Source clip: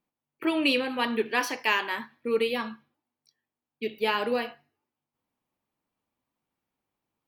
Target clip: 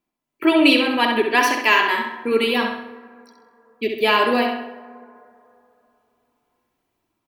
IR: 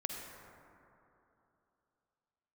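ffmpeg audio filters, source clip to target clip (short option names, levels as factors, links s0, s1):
-filter_complex "[0:a]aecho=1:1:3:0.39,dynaudnorm=f=130:g=5:m=2.11,asplit=2[s0][s1];[s1]adelay=66,lowpass=f=4300:p=1,volume=0.596,asplit=2[s2][s3];[s3]adelay=66,lowpass=f=4300:p=1,volume=0.51,asplit=2[s4][s5];[s5]adelay=66,lowpass=f=4300:p=1,volume=0.51,asplit=2[s6][s7];[s7]adelay=66,lowpass=f=4300:p=1,volume=0.51,asplit=2[s8][s9];[s9]adelay=66,lowpass=f=4300:p=1,volume=0.51,asplit=2[s10][s11];[s11]adelay=66,lowpass=f=4300:p=1,volume=0.51,asplit=2[s12][s13];[s13]adelay=66,lowpass=f=4300:p=1,volume=0.51[s14];[s0][s2][s4][s6][s8][s10][s12][s14]amix=inputs=8:normalize=0,asplit=2[s15][s16];[1:a]atrim=start_sample=2205,adelay=92[s17];[s16][s17]afir=irnorm=-1:irlink=0,volume=0.141[s18];[s15][s18]amix=inputs=2:normalize=0,volume=1.26"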